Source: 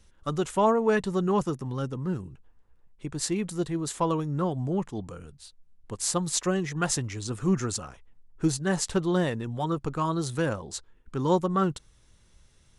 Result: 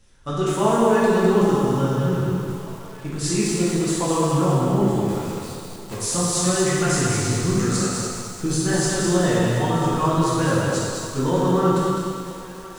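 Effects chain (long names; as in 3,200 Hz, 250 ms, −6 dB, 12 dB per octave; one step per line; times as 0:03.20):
0:05.01–0:05.96: one scale factor per block 3 bits
brickwall limiter −18.5 dBFS, peak gain reduction 7.5 dB
feedback echo with a high-pass in the loop 1,006 ms, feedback 66%, high-pass 450 Hz, level −17 dB
dense smooth reverb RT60 1.9 s, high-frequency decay 0.95×, DRR −8 dB
feedback echo at a low word length 205 ms, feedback 35%, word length 7 bits, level −4 dB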